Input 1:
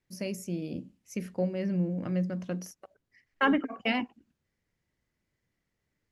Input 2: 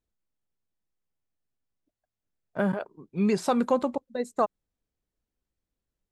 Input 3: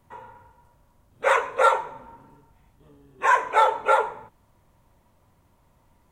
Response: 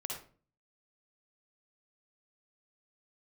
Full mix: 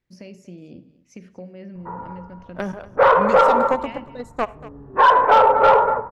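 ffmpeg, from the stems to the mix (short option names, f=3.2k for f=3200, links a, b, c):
-filter_complex "[0:a]lowpass=4.5k,acompressor=threshold=-40dB:ratio=2.5,volume=-8dB,asplit=4[a][b][c][d];[b]volume=-12dB[e];[c]volume=-17dB[f];[1:a]equalizer=f=8.9k:t=o:w=0.21:g=-4.5,aeval=exprs='0.266*(cos(1*acos(clip(val(0)/0.266,-1,1)))-cos(1*PI/2))+0.0596*(cos(3*acos(clip(val(0)/0.266,-1,1)))-cos(3*PI/2))':c=same,volume=-3dB,asplit=3[g][h][i];[h]volume=-17.5dB[j];[i]volume=-18.5dB[k];[2:a]lowpass=f=1.4k:w=0.5412,lowpass=f=1.4k:w=1.3066,adelay=1750,volume=2dB,asplit=3[l][m][n];[m]volume=-5dB[o];[n]volume=-12dB[p];[d]apad=whole_len=346634[q];[l][q]sidechaincompress=threshold=-49dB:ratio=8:attack=16:release=463[r];[3:a]atrim=start_sample=2205[s];[e][j][o]amix=inputs=3:normalize=0[t];[t][s]afir=irnorm=-1:irlink=0[u];[f][k][p]amix=inputs=3:normalize=0,aecho=0:1:236:1[v];[a][g][r][u][v]amix=inputs=5:normalize=0,acontrast=87,aeval=exprs='0.891*(cos(1*acos(clip(val(0)/0.891,-1,1)))-cos(1*PI/2))+0.00562*(cos(8*acos(clip(val(0)/0.891,-1,1)))-cos(8*PI/2))':c=same,alimiter=limit=-6dB:level=0:latency=1:release=70"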